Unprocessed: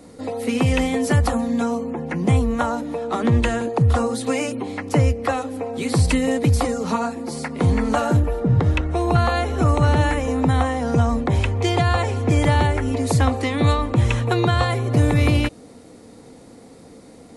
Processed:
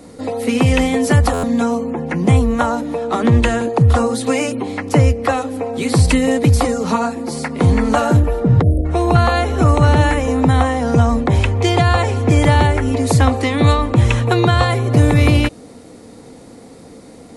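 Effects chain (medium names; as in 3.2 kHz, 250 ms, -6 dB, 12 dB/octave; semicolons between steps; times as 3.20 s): spectral selection erased 8.62–8.85 s, 740–8600 Hz; buffer glitch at 1.33 s, samples 512, times 8; trim +5 dB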